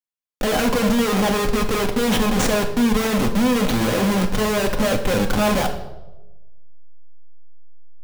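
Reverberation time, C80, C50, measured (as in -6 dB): 1.1 s, 11.5 dB, 9.5 dB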